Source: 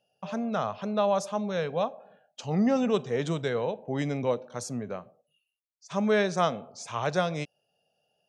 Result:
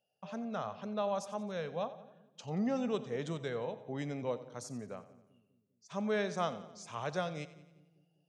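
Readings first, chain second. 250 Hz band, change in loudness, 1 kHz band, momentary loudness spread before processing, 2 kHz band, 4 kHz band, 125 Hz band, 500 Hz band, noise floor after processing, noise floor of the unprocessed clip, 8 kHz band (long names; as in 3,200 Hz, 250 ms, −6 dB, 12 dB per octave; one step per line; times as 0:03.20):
−9.0 dB, −9.0 dB, −9.0 dB, 12 LU, −9.0 dB, −9.0 dB, −9.0 dB, −9.0 dB, −77 dBFS, −80 dBFS, −9.0 dB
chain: echo with a time of its own for lows and highs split 360 Hz, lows 199 ms, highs 89 ms, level −15.5 dB
level −9 dB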